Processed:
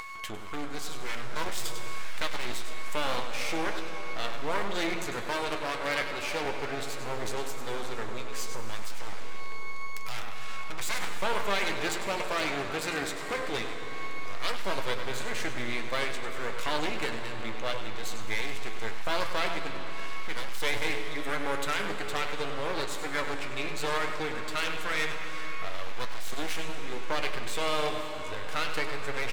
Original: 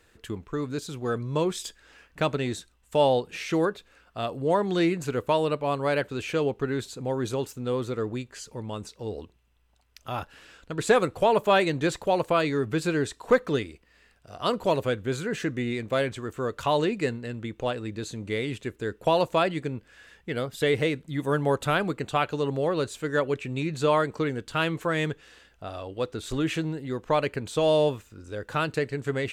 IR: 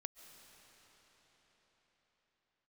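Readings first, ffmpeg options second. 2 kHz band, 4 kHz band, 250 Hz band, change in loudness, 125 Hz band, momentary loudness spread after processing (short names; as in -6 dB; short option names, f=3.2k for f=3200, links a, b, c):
+0.5 dB, +1.0 dB, -10.5 dB, -6.0 dB, -11.5 dB, 8 LU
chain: -filter_complex "[0:a]aeval=exprs='val(0)+0.00562*sin(2*PI*1100*n/s)':c=same,bandreject=f=86.5:t=h:w=4,bandreject=f=173:t=h:w=4,bandreject=f=259.5:t=h:w=4,bandreject=f=346:t=h:w=4,bandreject=f=432.5:t=h:w=4,bandreject=f=519:t=h:w=4,bandreject=f=605.5:t=h:w=4,bandreject=f=692:t=h:w=4,bandreject=f=778.5:t=h:w=4,bandreject=f=865:t=h:w=4,bandreject=f=951.5:t=h:w=4,bandreject=f=1.038k:t=h:w=4,bandreject=f=1.1245k:t=h:w=4,bandreject=f=1.211k:t=h:w=4,bandreject=f=1.2975k:t=h:w=4,bandreject=f=1.384k:t=h:w=4,bandreject=f=1.4705k:t=h:w=4,bandreject=f=1.557k:t=h:w=4,bandreject=f=1.6435k:t=h:w=4,bandreject=f=1.73k:t=h:w=4,bandreject=f=1.8165k:t=h:w=4,bandreject=f=1.903k:t=h:w=4,bandreject=f=1.9895k:t=h:w=4,bandreject=f=2.076k:t=h:w=4,bandreject=f=2.1625k:t=h:w=4,bandreject=f=2.249k:t=h:w=4,bandreject=f=2.3355k:t=h:w=4,bandreject=f=2.422k:t=h:w=4,bandreject=f=2.5085k:t=h:w=4,bandreject=f=2.595k:t=h:w=4,bandreject=f=2.6815k:t=h:w=4,bandreject=f=2.768k:t=h:w=4,bandreject=f=2.8545k:t=h:w=4,bandreject=f=2.941k:t=h:w=4,bandreject=f=3.0275k:t=h:w=4,bandreject=f=3.114k:t=h:w=4,alimiter=limit=-16dB:level=0:latency=1:release=42,asplit=2[a][b];[b]adelay=99.13,volume=-9dB,highshelf=f=4k:g=-2.23[c];[a][c]amix=inputs=2:normalize=0,acompressor=mode=upward:threshold=-30dB:ratio=2.5,aeval=exprs='max(val(0),0)':c=same[d];[1:a]atrim=start_sample=2205[e];[d][e]afir=irnorm=-1:irlink=0,aeval=exprs='0.0531*(abs(mod(val(0)/0.0531+3,4)-2)-1)':c=same,equalizer=f=2.2k:w=6.9:g=4.5,flanger=delay=8.7:depth=2:regen=63:speed=0.58:shape=sinusoidal,tiltshelf=f=870:g=-5.5,volume=8.5dB"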